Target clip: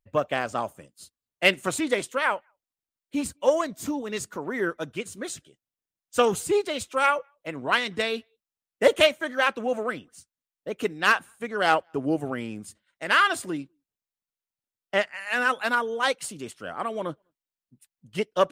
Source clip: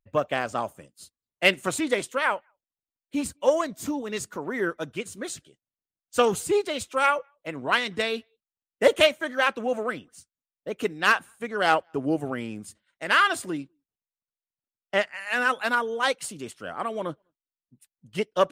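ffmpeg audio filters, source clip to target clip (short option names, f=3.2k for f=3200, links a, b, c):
-filter_complex "[0:a]asettb=1/sr,asplit=3[a][b][c];[a]atrim=end=5.324[d];[b]atrim=start=5.32:end=6.35,asetpts=PTS-STARTPTS,afade=t=in:d=0.004:c=qsin,afade=t=out:st=1.026:d=0.004:c=qsin,bandreject=f=4.4k:w=14[e];[c]atrim=start=6.346[f];[d][e]acrossfade=d=0.004:c1=hsin:c2=qsin[g];[g][f]acrossfade=d=0.004:c1=qsin:c2=hsin"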